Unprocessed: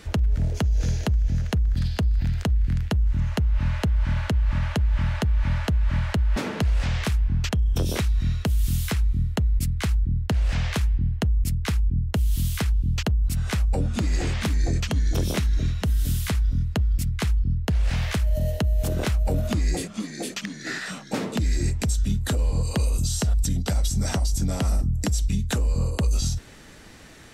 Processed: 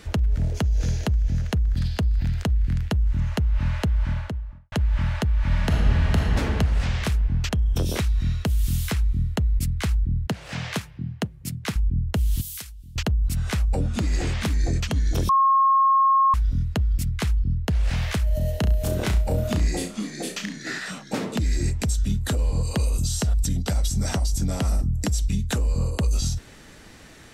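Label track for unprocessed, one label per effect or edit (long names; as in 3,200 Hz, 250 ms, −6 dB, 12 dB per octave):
3.910000	4.720000	fade out and dull
5.450000	6.240000	thrown reverb, RT60 3 s, DRR −2 dB
10.270000	11.760000	high-pass filter 120 Hz 24 dB per octave
12.410000	12.960000	first-order pre-emphasis coefficient 0.9
15.290000	16.340000	beep over 1,080 Hz −14.5 dBFS
18.590000	20.590000	flutter between parallel walls apart 5.8 metres, dies away in 0.31 s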